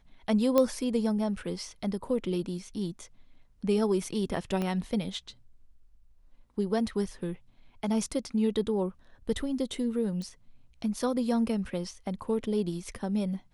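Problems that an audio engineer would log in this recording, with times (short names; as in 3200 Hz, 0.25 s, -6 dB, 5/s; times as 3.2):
0.58 pop -11 dBFS
4.62 pop -19 dBFS
10.22 pop -28 dBFS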